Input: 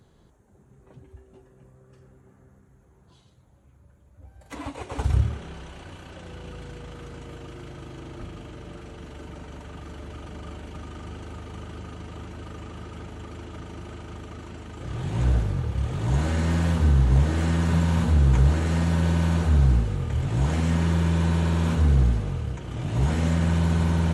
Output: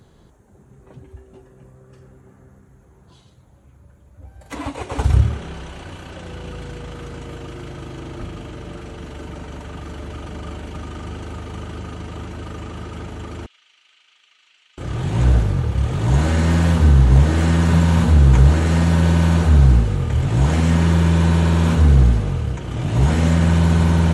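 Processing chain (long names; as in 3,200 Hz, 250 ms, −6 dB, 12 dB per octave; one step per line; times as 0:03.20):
0:13.46–0:14.78: four-pole ladder band-pass 3,500 Hz, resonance 35%
level +7 dB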